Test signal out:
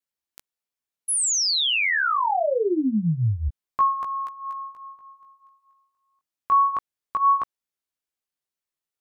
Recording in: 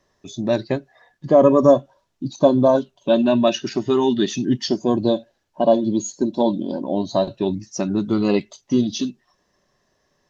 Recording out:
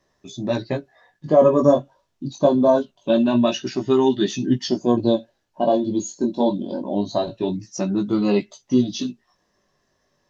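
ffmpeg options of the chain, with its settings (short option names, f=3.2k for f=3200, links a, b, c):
-af "flanger=delay=15:depth=6:speed=0.24,volume=1.5dB"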